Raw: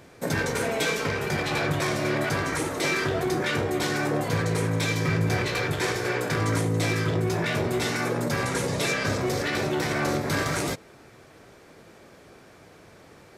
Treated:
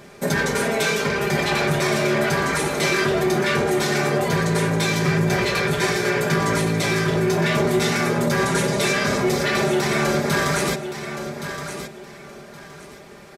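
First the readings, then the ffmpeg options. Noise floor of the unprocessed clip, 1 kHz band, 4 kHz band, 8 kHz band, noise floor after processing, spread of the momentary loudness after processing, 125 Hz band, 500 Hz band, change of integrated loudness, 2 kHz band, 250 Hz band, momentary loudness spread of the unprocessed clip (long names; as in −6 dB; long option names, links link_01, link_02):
−52 dBFS, +6.0 dB, +6.0 dB, +6.0 dB, −41 dBFS, 10 LU, +3.5 dB, +6.5 dB, +5.5 dB, +5.5 dB, +6.0 dB, 2 LU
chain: -filter_complex "[0:a]aecho=1:1:5:0.69,asplit=2[link_01][link_02];[link_02]alimiter=limit=-19.5dB:level=0:latency=1,volume=-2dB[link_03];[link_01][link_03]amix=inputs=2:normalize=0,aecho=1:1:1120|2240|3360:0.335|0.077|0.0177"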